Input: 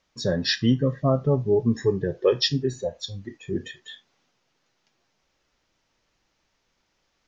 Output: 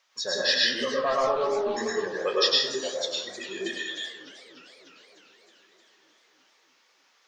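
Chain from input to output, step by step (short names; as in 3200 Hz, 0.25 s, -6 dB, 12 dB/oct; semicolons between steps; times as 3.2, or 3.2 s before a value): HPF 880 Hz 12 dB/oct; in parallel at +1.5 dB: compressor, threshold -38 dBFS, peak gain reduction 18 dB; 0.66–1.77 on the sum: overdrive pedal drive 12 dB, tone 2300 Hz, clips at -14.5 dBFS; plate-style reverb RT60 0.83 s, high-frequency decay 0.55×, pre-delay 90 ms, DRR -4 dB; warbling echo 0.304 s, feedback 71%, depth 219 cents, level -17.5 dB; gain -2 dB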